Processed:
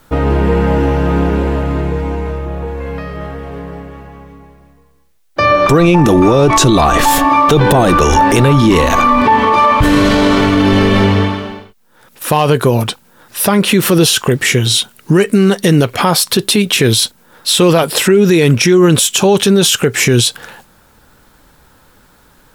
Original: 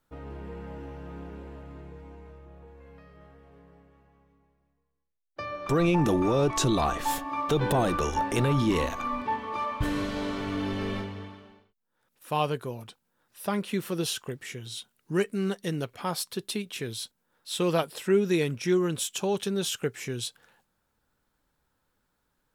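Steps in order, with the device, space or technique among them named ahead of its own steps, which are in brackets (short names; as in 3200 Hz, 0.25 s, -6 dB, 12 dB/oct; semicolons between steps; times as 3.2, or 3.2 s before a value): loud club master (compressor 2:1, threshold -29 dBFS, peak gain reduction 6.5 dB; hard clip -20.5 dBFS, distortion -37 dB; maximiser +29 dB); gain -1 dB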